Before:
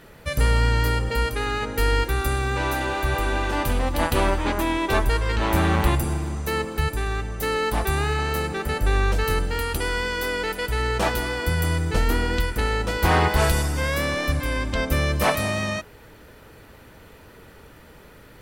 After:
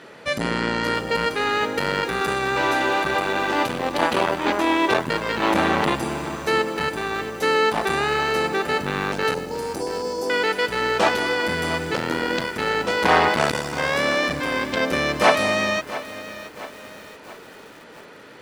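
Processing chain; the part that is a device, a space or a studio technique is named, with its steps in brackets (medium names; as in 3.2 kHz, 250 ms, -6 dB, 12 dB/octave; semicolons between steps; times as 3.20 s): public-address speaker with an overloaded transformer (transformer saturation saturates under 270 Hz; band-pass 250–6300 Hz); 9.34–10.30 s: Chebyshev band-stop 880–5100 Hz, order 3; bit-crushed delay 677 ms, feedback 55%, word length 7-bit, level -14 dB; trim +6 dB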